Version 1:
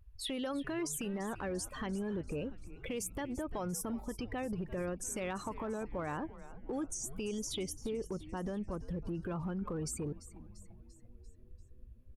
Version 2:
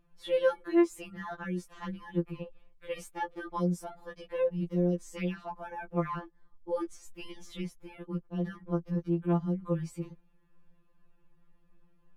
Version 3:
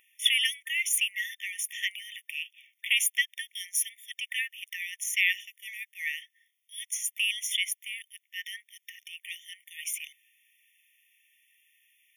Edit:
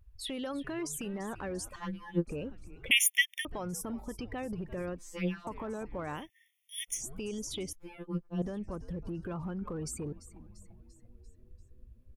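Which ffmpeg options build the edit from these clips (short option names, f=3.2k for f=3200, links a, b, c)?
-filter_complex "[1:a]asplit=3[a][b][c];[2:a]asplit=2[d][e];[0:a]asplit=6[f][g][h][i][j][k];[f]atrim=end=1.762[l];[a]atrim=start=1.758:end=2.272[m];[g]atrim=start=2.268:end=2.912[n];[d]atrim=start=2.908:end=3.452[o];[h]atrim=start=3.448:end=4.982[p];[b]atrim=start=4.978:end=5.472[q];[i]atrim=start=5.468:end=6.3[r];[e]atrim=start=6.14:end=7.03[s];[j]atrim=start=6.87:end=7.732[t];[c]atrim=start=7.728:end=8.422[u];[k]atrim=start=8.418[v];[l][m]acrossfade=d=0.004:c1=hsin:c2=hsin[w];[w][n]acrossfade=d=0.004:c1=hsin:c2=hsin[x];[x][o]acrossfade=d=0.004:c1=hsin:c2=hsin[y];[y][p]acrossfade=d=0.004:c1=hsin:c2=hsin[z];[z][q]acrossfade=d=0.004:c1=hsin:c2=hsin[aa];[aa][r]acrossfade=d=0.004:c1=hsin:c2=hsin[ab];[ab][s]acrossfade=d=0.16:c1=tri:c2=tri[ac];[ac][t]acrossfade=d=0.16:c1=tri:c2=tri[ad];[ad][u]acrossfade=d=0.004:c1=hsin:c2=hsin[ae];[ae][v]acrossfade=d=0.004:c1=hsin:c2=hsin"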